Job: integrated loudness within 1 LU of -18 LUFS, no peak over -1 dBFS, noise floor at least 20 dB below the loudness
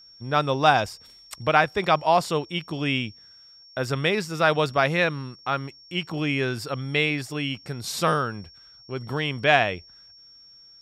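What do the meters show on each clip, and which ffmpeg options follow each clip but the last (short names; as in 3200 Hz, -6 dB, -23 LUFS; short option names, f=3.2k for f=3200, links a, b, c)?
steady tone 5500 Hz; tone level -48 dBFS; loudness -24.0 LUFS; peak -3.5 dBFS; loudness target -18.0 LUFS
-> -af "bandreject=f=5.5k:w=30"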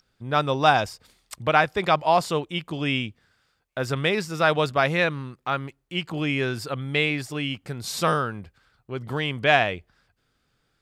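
steady tone none; loudness -24.0 LUFS; peak -3.0 dBFS; loudness target -18.0 LUFS
-> -af "volume=6dB,alimiter=limit=-1dB:level=0:latency=1"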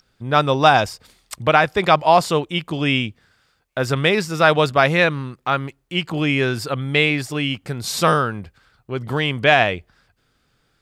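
loudness -18.5 LUFS; peak -1.0 dBFS; noise floor -66 dBFS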